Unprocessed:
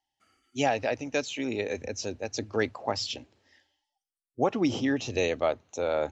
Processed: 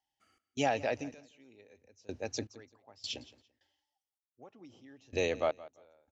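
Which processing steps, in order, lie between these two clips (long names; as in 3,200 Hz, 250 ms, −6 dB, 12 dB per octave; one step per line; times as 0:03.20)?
fade-out on the ending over 0.53 s
harmonic generator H 5 −36 dB, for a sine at −12 dBFS
gate pattern "xx.xxx.....xx..." 79 BPM −24 dB
repeating echo 170 ms, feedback 21%, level −19 dB
level −4.5 dB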